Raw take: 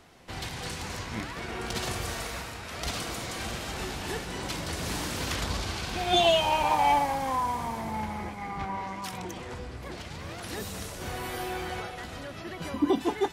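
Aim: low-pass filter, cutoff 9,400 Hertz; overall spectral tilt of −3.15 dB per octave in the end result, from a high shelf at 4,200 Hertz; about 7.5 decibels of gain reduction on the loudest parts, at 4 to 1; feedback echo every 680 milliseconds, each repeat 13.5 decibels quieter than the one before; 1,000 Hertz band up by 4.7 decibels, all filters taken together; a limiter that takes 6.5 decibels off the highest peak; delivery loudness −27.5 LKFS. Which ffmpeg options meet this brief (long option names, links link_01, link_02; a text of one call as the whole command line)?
ffmpeg -i in.wav -af "lowpass=9400,equalizer=frequency=1000:width_type=o:gain=5.5,highshelf=frequency=4200:gain=6,acompressor=threshold=-24dB:ratio=4,alimiter=limit=-21.5dB:level=0:latency=1,aecho=1:1:680|1360:0.211|0.0444,volume=4.5dB" out.wav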